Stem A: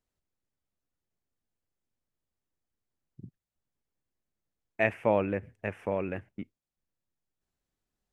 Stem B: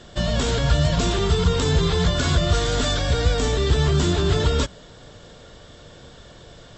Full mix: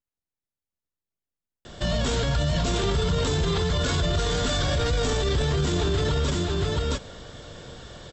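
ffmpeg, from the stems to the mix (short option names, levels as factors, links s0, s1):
-filter_complex "[0:a]aeval=exprs='abs(val(0))':c=same,volume=0.422,asplit=2[s0][s1];[s1]volume=0.501[s2];[1:a]adelay=1650,volume=1.26,asplit=2[s3][s4];[s4]volume=0.422[s5];[s2][s5]amix=inputs=2:normalize=0,aecho=0:1:669:1[s6];[s0][s3][s6]amix=inputs=3:normalize=0,alimiter=limit=0.15:level=0:latency=1:release=23"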